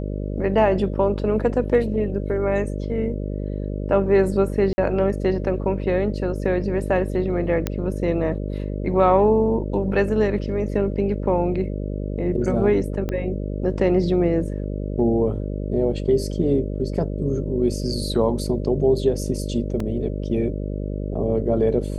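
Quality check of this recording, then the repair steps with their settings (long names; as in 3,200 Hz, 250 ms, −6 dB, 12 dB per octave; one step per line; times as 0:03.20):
mains buzz 50 Hz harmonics 12 −27 dBFS
0:04.73–0:04.78: drop-out 50 ms
0:07.67: click −9 dBFS
0:13.09: click −14 dBFS
0:19.80: drop-out 2.9 ms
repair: click removal
hum removal 50 Hz, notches 12
repair the gap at 0:04.73, 50 ms
repair the gap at 0:19.80, 2.9 ms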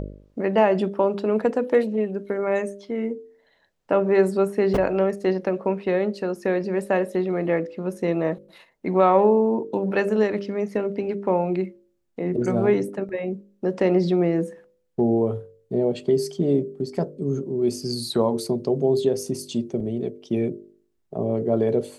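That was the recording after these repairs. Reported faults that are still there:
0:13.09: click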